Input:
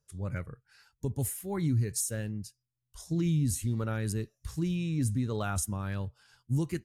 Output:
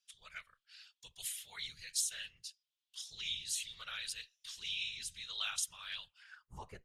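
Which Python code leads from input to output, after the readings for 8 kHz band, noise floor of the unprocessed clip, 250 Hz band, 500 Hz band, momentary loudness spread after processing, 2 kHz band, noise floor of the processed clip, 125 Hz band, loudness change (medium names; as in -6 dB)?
-3.0 dB, -84 dBFS, under -35 dB, -25.5 dB, 19 LU, 0.0 dB, under -85 dBFS, -33.5 dB, -8.0 dB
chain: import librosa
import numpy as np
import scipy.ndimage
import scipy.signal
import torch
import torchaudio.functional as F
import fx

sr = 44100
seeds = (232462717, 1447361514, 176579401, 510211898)

y = fx.filter_sweep_bandpass(x, sr, from_hz=3300.0, to_hz=500.0, start_s=6.05, end_s=6.8, q=3.6)
y = fx.whisperise(y, sr, seeds[0])
y = fx.tone_stack(y, sr, knobs='10-0-10')
y = F.gain(torch.from_numpy(y), 16.0).numpy()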